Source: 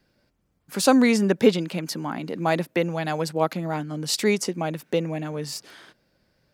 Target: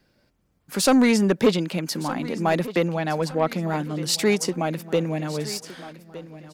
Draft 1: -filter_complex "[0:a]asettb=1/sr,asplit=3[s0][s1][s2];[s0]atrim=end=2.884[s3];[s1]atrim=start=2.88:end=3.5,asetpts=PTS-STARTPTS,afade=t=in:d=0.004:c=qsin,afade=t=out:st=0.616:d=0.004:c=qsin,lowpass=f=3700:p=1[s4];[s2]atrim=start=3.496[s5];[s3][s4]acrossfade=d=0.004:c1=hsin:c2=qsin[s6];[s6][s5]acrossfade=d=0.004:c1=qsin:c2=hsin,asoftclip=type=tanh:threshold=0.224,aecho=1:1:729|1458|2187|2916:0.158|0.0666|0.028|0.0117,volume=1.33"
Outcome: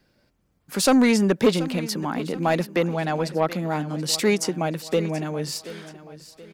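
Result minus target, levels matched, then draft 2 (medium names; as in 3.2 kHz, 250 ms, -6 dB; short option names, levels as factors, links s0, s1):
echo 485 ms early
-filter_complex "[0:a]asettb=1/sr,asplit=3[s0][s1][s2];[s0]atrim=end=2.884[s3];[s1]atrim=start=2.88:end=3.5,asetpts=PTS-STARTPTS,afade=t=in:d=0.004:c=qsin,afade=t=out:st=0.616:d=0.004:c=qsin,lowpass=f=3700:p=1[s4];[s2]atrim=start=3.496[s5];[s3][s4]acrossfade=d=0.004:c1=hsin:c2=qsin[s6];[s6][s5]acrossfade=d=0.004:c1=qsin:c2=hsin,asoftclip=type=tanh:threshold=0.224,aecho=1:1:1214|2428|3642|4856:0.158|0.0666|0.028|0.0117,volume=1.33"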